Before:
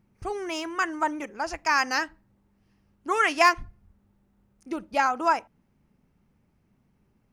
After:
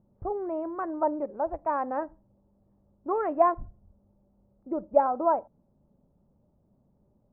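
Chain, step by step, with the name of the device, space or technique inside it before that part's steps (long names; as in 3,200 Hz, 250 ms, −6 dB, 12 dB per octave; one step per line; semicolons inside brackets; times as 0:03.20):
under water (low-pass filter 950 Hz 24 dB per octave; parametric band 580 Hz +11 dB 0.26 octaves)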